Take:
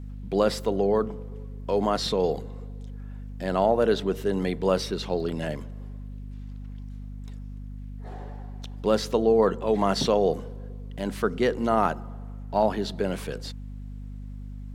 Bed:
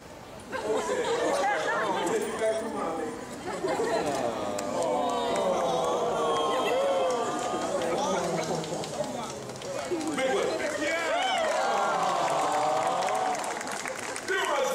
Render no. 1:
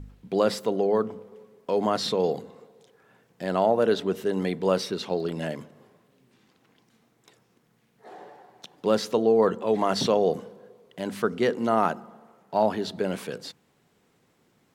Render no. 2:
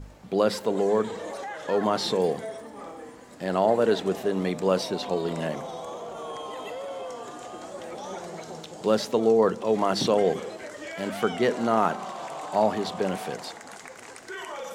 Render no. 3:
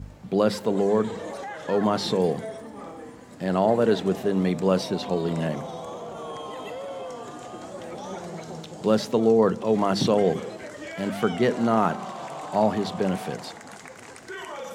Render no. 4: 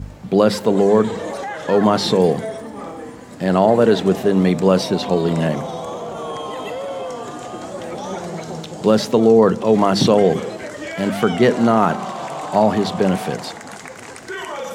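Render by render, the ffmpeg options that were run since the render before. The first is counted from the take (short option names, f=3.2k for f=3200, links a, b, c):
-af "bandreject=f=50:t=h:w=4,bandreject=f=100:t=h:w=4,bandreject=f=150:t=h:w=4,bandreject=f=200:t=h:w=4,bandreject=f=250:t=h:w=4"
-filter_complex "[1:a]volume=-9.5dB[a];[0:a][a]amix=inputs=2:normalize=0"
-af "highpass=63,bass=f=250:g=8,treble=f=4k:g=-1"
-af "volume=8dB,alimiter=limit=-3dB:level=0:latency=1"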